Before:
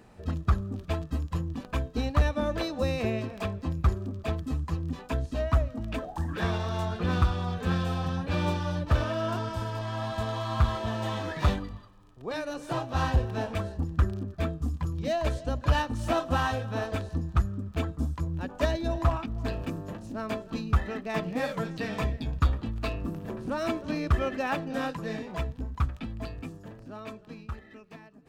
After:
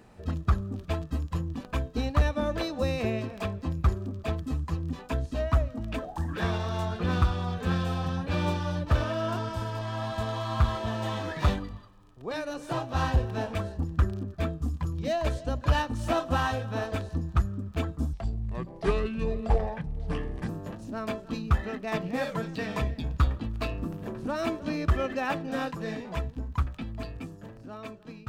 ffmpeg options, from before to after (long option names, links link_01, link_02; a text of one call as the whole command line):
ffmpeg -i in.wav -filter_complex "[0:a]asplit=3[link_01][link_02][link_03];[link_01]atrim=end=18.134[link_04];[link_02]atrim=start=18.13:end=19.71,asetpts=PTS-STARTPTS,asetrate=29547,aresample=44100,atrim=end_sample=103997,asetpts=PTS-STARTPTS[link_05];[link_03]atrim=start=19.706[link_06];[link_04][link_05]acrossfade=duration=0.004:curve1=hsin:curve2=hsin[link_07];[link_07][link_06]acrossfade=duration=0.004:curve1=hsin:curve2=hsin" out.wav